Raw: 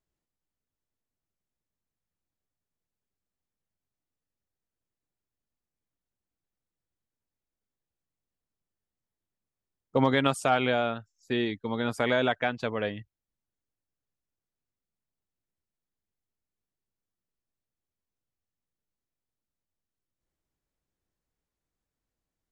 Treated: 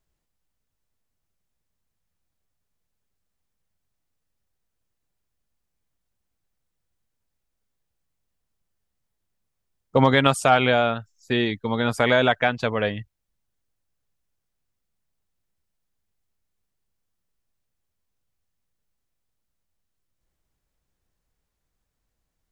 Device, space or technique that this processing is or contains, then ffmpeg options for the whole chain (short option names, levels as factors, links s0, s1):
low shelf boost with a cut just above: -af "lowshelf=f=65:g=6,equalizer=f=310:t=o:w=0.99:g=-4,volume=2.37"